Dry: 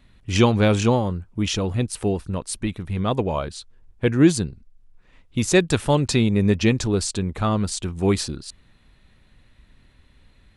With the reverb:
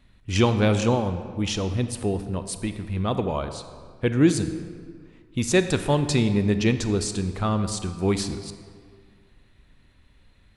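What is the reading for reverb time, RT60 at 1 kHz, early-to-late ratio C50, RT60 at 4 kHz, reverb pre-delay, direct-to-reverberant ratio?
2.0 s, 1.9 s, 10.0 dB, 1.2 s, 28 ms, 9.5 dB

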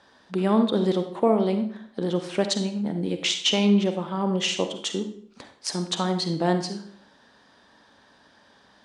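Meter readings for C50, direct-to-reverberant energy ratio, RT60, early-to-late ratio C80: 8.5 dB, 7.0 dB, 0.55 s, 12.0 dB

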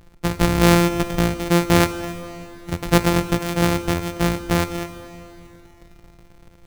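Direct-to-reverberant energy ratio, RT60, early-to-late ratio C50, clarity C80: 11.0 dB, 3.0 s, 12.0 dB, 12.5 dB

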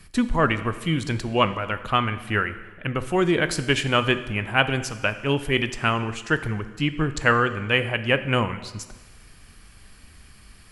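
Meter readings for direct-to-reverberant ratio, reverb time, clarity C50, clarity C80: 11.0 dB, 1.3 s, 13.0 dB, 14.5 dB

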